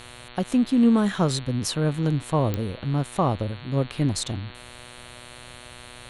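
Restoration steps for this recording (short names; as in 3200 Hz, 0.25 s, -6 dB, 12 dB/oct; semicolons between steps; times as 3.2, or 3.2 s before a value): de-click; de-hum 122.2 Hz, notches 36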